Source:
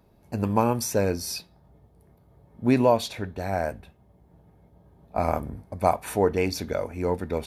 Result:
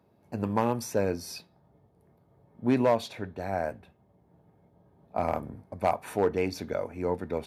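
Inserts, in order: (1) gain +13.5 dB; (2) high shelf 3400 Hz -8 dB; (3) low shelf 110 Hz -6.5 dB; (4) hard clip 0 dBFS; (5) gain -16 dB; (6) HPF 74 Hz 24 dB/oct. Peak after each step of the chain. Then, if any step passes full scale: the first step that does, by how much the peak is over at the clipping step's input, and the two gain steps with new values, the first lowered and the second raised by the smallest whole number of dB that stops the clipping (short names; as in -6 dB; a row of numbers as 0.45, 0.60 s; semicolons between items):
+7.0, +6.5, +6.5, 0.0, -16.0, -12.5 dBFS; step 1, 6.5 dB; step 1 +6.5 dB, step 5 -9 dB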